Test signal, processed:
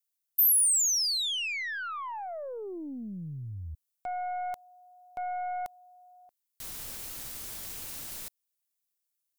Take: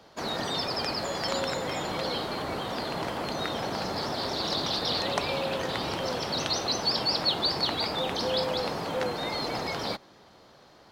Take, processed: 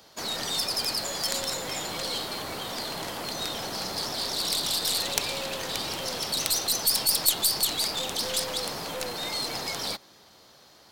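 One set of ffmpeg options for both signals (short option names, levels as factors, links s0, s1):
-af "aeval=exprs='0.335*(cos(1*acos(clip(val(0)/0.335,-1,1)))-cos(1*PI/2))+0.0944*(cos(3*acos(clip(val(0)/0.335,-1,1)))-cos(3*PI/2))+0.0211*(cos(6*acos(clip(val(0)/0.335,-1,1)))-cos(6*PI/2))+0.0473*(cos(7*acos(clip(val(0)/0.335,-1,1)))-cos(7*PI/2))':c=same,crystalizer=i=4:c=0,volume=0.794"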